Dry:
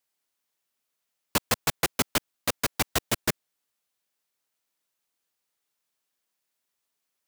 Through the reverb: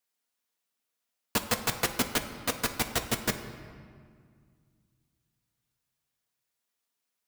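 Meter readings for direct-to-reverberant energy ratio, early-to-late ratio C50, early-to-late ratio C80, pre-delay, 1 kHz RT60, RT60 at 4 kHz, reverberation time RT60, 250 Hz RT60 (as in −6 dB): 4.5 dB, 9.5 dB, 10.5 dB, 4 ms, 2.0 s, 1.3 s, 2.0 s, 2.7 s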